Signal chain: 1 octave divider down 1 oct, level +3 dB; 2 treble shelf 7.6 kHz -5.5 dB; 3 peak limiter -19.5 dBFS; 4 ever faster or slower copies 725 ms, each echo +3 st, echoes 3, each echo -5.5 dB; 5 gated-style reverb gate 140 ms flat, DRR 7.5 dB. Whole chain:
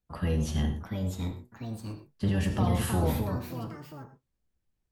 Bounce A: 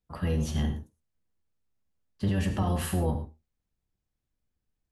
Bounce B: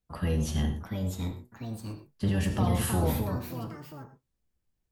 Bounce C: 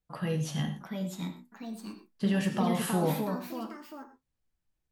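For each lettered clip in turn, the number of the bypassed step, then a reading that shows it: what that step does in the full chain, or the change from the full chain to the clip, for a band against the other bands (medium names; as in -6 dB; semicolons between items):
4, momentary loudness spread change -7 LU; 2, 8 kHz band +3.0 dB; 1, 125 Hz band -6.0 dB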